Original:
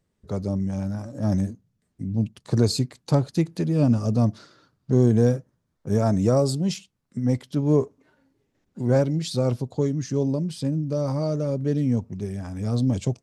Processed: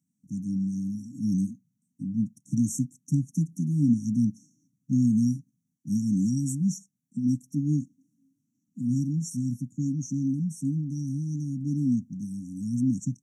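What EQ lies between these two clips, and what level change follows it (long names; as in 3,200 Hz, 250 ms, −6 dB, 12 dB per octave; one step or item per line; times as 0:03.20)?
high-pass filter 150 Hz 24 dB per octave
linear-phase brick-wall band-stop 300–5,500 Hz
0.0 dB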